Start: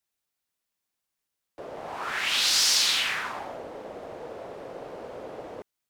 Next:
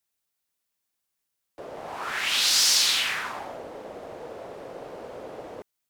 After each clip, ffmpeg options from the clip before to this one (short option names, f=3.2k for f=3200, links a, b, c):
-af "highshelf=f=6.6k:g=4.5"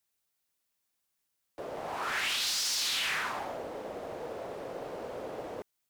-af "alimiter=limit=-19.5dB:level=0:latency=1,asoftclip=type=tanh:threshold=-25.5dB,acrusher=bits=8:mode=log:mix=0:aa=0.000001"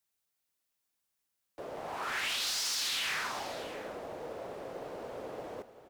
-af "aecho=1:1:392|647:0.158|0.168,volume=-2.5dB"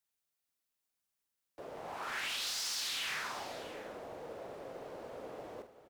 -filter_complex "[0:a]asplit=2[a][b];[b]adelay=46,volume=-10dB[c];[a][c]amix=inputs=2:normalize=0,volume=-4.5dB"